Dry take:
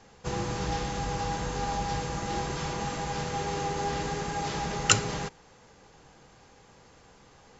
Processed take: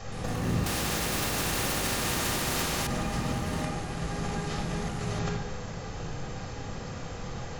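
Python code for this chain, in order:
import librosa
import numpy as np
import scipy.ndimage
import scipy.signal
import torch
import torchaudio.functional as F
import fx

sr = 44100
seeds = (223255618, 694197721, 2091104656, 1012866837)

y = fx.low_shelf(x, sr, hz=120.0, db=4.5)
y = fx.over_compress(y, sr, threshold_db=-40.0, ratio=-1.0)
y = fx.room_shoebox(y, sr, seeds[0], volume_m3=3800.0, walls='furnished', distance_m=6.3)
y = fx.echo_pitch(y, sr, ms=121, semitones=7, count=3, db_per_echo=-3.0)
y = fx.spectral_comp(y, sr, ratio=2.0, at=(0.66, 2.87))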